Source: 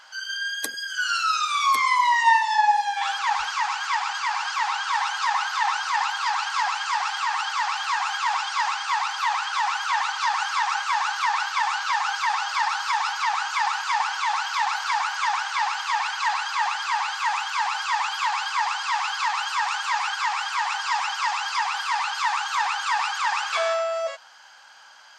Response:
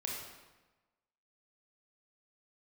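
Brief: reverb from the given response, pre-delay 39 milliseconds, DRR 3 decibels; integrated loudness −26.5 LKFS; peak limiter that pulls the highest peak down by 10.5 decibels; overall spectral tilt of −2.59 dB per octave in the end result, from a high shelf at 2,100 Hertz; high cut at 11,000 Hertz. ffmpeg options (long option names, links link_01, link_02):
-filter_complex "[0:a]lowpass=11000,highshelf=frequency=2100:gain=7.5,alimiter=limit=-13.5dB:level=0:latency=1,asplit=2[link_01][link_02];[1:a]atrim=start_sample=2205,adelay=39[link_03];[link_02][link_03]afir=irnorm=-1:irlink=0,volume=-4.5dB[link_04];[link_01][link_04]amix=inputs=2:normalize=0,volume=-6dB"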